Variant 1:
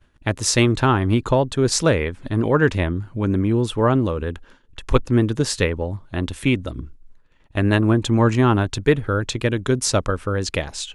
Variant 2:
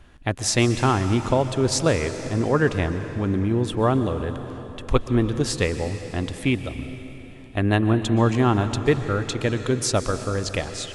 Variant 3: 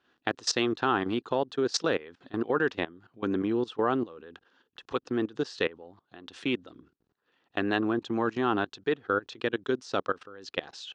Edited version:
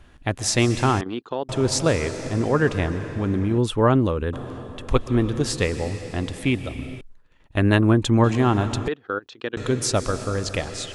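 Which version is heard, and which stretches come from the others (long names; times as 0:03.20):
2
0:01.01–0:01.49: punch in from 3
0:03.58–0:04.33: punch in from 1
0:07.01–0:08.24: punch in from 1
0:08.88–0:09.57: punch in from 3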